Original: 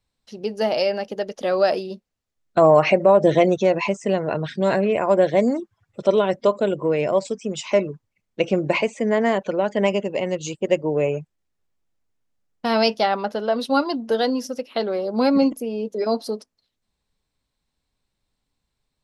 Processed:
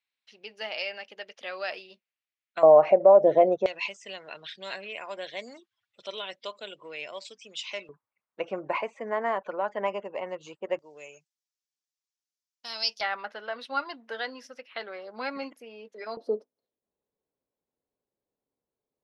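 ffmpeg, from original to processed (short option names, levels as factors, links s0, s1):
-af "asetnsamples=n=441:p=0,asendcmd='2.63 bandpass f 650;3.66 bandpass f 3400;7.89 bandpass f 1100;10.79 bandpass f 5600;13.01 bandpass f 1900;16.17 bandpass f 460',bandpass=f=2400:t=q:w=2:csg=0"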